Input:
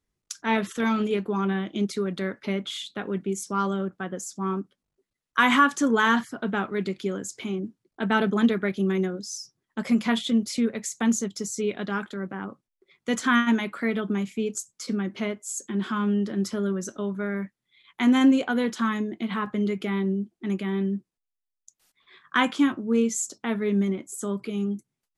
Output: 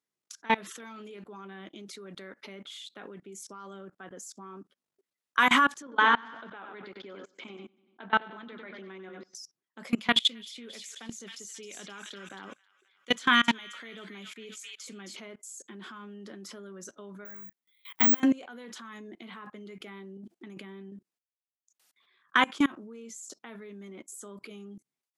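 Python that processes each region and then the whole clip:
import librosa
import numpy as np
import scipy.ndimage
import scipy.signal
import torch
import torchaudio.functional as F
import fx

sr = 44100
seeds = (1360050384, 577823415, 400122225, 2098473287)

y = fx.chain(x, sr, fx.cabinet(low_hz=150.0, low_slope=12, high_hz=4300.0, hz=(180.0, 400.0, 970.0), db=(-6, -4, 4)),
    fx.level_steps(step_db=11),
    fx.echo_feedback(ms=95, feedback_pct=47, wet_db=-9.0), at=(5.82, 9.35))
y = fx.chain(y, sr, fx.peak_eq(hz=3200.0, db=8.5, octaves=0.98),
    fx.echo_wet_highpass(ms=266, feedback_pct=32, hz=2200.0, wet_db=-4.0), at=(9.9, 15.17))
y = fx.chain(y, sr, fx.doubler(ms=21.0, db=-3.5),
    fx.resample_bad(factor=2, down='none', up='zero_stuff'),
    fx.band_squash(depth_pct=40), at=(17.25, 18.2))
y = fx.chain(y, sr, fx.low_shelf(hz=280.0, db=4.5),
    fx.over_compress(threshold_db=-30.0, ratio=-0.5), at=(20.17, 20.92))
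y = scipy.signal.sosfilt(scipy.signal.butter(2, 150.0, 'highpass', fs=sr, output='sos'), y)
y = fx.low_shelf(y, sr, hz=250.0, db=-11.5)
y = fx.level_steps(y, sr, step_db=24)
y = y * 10.0 ** (3.5 / 20.0)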